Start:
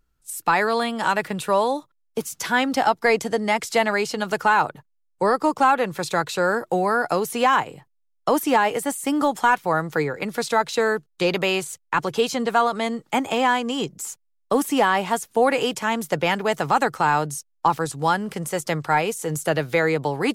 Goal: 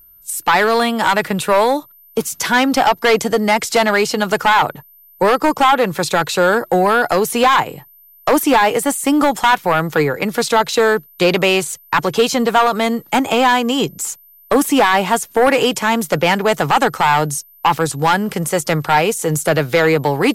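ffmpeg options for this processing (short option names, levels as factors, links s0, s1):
-af "aeval=exprs='0.447*sin(PI/2*1.78*val(0)/0.447)':c=same,aeval=exprs='val(0)+0.00631*sin(2*PI*13000*n/s)':c=same"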